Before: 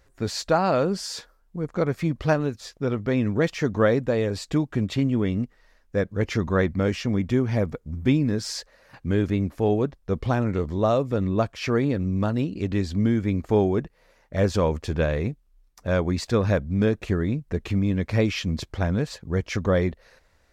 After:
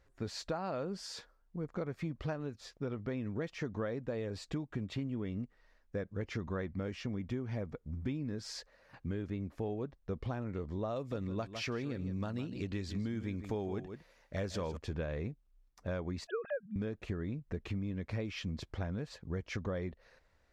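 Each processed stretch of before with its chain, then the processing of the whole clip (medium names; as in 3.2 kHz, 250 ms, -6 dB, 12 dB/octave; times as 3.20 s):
10.96–14.77 s: treble shelf 2.3 kHz +9 dB + delay 157 ms -13 dB
16.27–16.76 s: formants replaced by sine waves + static phaser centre 1.5 kHz, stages 8
whole clip: compression, threshold -26 dBFS; treble shelf 7.1 kHz -10.5 dB; trim -8 dB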